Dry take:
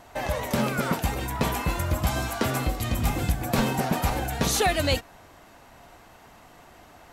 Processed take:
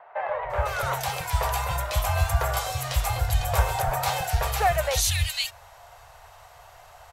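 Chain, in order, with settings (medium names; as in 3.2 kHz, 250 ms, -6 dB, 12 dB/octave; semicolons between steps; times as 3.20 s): Chebyshev band-stop 100–640 Hz, order 2; three bands offset in time mids, lows, highs 290/500 ms, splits 220/2100 Hz; trim +3.5 dB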